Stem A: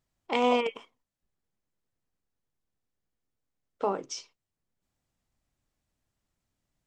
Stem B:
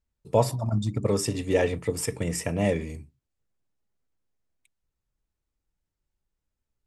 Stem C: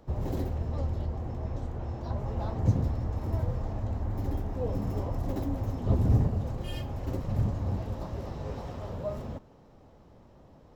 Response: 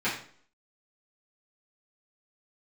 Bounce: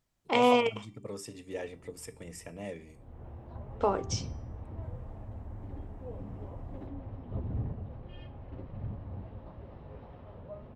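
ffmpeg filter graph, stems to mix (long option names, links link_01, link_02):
-filter_complex "[0:a]volume=1.5dB[link_01];[1:a]highpass=frequency=180:poles=1,volume=-14.5dB,asplit=2[link_02][link_03];[2:a]lowpass=frequency=3200:width=0.5412,lowpass=frequency=3200:width=1.3066,acontrast=69,adelay=1450,volume=-17.5dB[link_04];[link_03]apad=whole_len=538304[link_05];[link_04][link_05]sidechaincompress=threshold=-58dB:ratio=8:attack=23:release=302[link_06];[link_01][link_02][link_06]amix=inputs=3:normalize=0,bandreject=frequency=390.1:width_type=h:width=4,bandreject=frequency=780.2:width_type=h:width=4,bandreject=frequency=1170.3:width_type=h:width=4,bandreject=frequency=1560.4:width_type=h:width=4,bandreject=frequency=1950.5:width_type=h:width=4,bandreject=frequency=2340.6:width_type=h:width=4,bandreject=frequency=2730.7:width_type=h:width=4,bandreject=frequency=3120.8:width_type=h:width=4,bandreject=frequency=3510.9:width_type=h:width=4,bandreject=frequency=3901:width_type=h:width=4,bandreject=frequency=4291.1:width_type=h:width=4,bandreject=frequency=4681.2:width_type=h:width=4,bandreject=frequency=5071.3:width_type=h:width=4,bandreject=frequency=5461.4:width_type=h:width=4,bandreject=frequency=5851.5:width_type=h:width=4,bandreject=frequency=6241.6:width_type=h:width=4,bandreject=frequency=6631.7:width_type=h:width=4,bandreject=frequency=7021.8:width_type=h:width=4,bandreject=frequency=7411.9:width_type=h:width=4,bandreject=frequency=7802:width_type=h:width=4,bandreject=frequency=8192.1:width_type=h:width=4,bandreject=frequency=8582.2:width_type=h:width=4,bandreject=frequency=8972.3:width_type=h:width=4,bandreject=frequency=9362.4:width_type=h:width=4,bandreject=frequency=9752.5:width_type=h:width=4,bandreject=frequency=10142.6:width_type=h:width=4,bandreject=frequency=10532.7:width_type=h:width=4,bandreject=frequency=10922.8:width_type=h:width=4,bandreject=frequency=11312.9:width_type=h:width=4,bandreject=frequency=11703:width_type=h:width=4,bandreject=frequency=12093.1:width_type=h:width=4,bandreject=frequency=12483.2:width_type=h:width=4,bandreject=frequency=12873.3:width_type=h:width=4,bandreject=frequency=13263.4:width_type=h:width=4,bandreject=frequency=13653.5:width_type=h:width=4"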